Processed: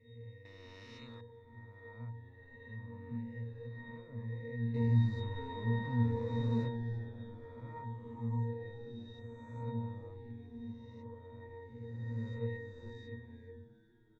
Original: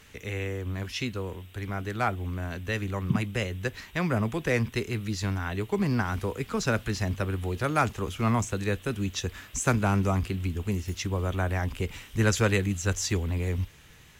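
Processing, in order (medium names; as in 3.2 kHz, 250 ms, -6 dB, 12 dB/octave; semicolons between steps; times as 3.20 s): reverse spectral sustain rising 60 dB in 2.03 s; 4.74–6.68 s: waveshaping leveller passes 5; pitch-class resonator A#, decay 0.71 s; frequency-shifting echo 415 ms, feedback 60%, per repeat -110 Hz, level -21 dB; 0.45–1.21 s: spectrum-flattening compressor 2:1; trim -3 dB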